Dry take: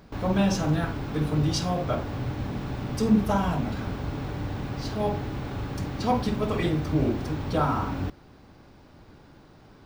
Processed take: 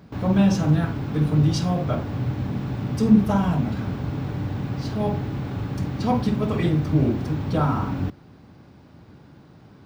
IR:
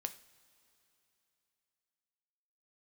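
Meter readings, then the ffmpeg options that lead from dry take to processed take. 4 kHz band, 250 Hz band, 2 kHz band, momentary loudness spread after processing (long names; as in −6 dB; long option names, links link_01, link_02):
−1.0 dB, +5.0 dB, 0.0 dB, 10 LU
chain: -af "highpass=110,bass=frequency=250:gain=9,treble=frequency=4000:gain=-2"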